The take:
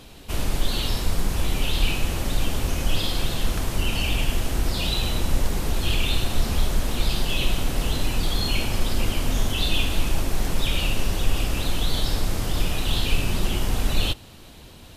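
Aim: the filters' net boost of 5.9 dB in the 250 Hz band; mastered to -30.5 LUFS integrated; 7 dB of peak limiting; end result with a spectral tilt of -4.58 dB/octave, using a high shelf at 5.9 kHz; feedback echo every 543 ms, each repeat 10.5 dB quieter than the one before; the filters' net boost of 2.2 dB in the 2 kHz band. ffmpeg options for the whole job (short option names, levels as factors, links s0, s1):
-af "equalizer=f=250:t=o:g=7.5,equalizer=f=2000:t=o:g=3.5,highshelf=f=5900:g=-3,alimiter=limit=0.211:level=0:latency=1,aecho=1:1:543|1086|1629:0.299|0.0896|0.0269,volume=0.596"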